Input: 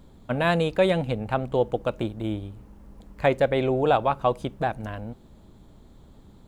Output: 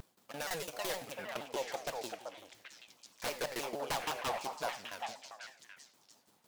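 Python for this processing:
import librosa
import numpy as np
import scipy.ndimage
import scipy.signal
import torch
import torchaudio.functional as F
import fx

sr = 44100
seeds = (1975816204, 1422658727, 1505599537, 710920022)

p1 = scipy.ndimage.median_filter(x, 15, mode='constant')
p2 = scipy.signal.sosfilt(scipy.signal.butter(2, 100.0, 'highpass', fs=sr, output='sos'), p1)
p3 = np.diff(p2, prepend=0.0)
p4 = fx.level_steps(p3, sr, step_db=17, at=(2.09, 2.52))
p5 = fx.tremolo_shape(p4, sr, shape='saw_down', hz=5.9, depth_pct=95)
p6 = 10.0 ** (-39.5 / 20.0) * (np.abs((p5 / 10.0 ** (-39.5 / 20.0) + 3.0) % 4.0 - 2.0) - 1.0)
p7 = p6 + fx.echo_stepped(p6, sr, ms=389, hz=830.0, octaves=1.4, feedback_pct=70, wet_db=-0.5, dry=0)
p8 = fx.rev_gated(p7, sr, seeds[0], gate_ms=120, shape='flat', drr_db=9.0)
p9 = fx.vibrato_shape(p8, sr, shape='saw_down', rate_hz=6.4, depth_cents=250.0)
y = p9 * librosa.db_to_amplitude(11.5)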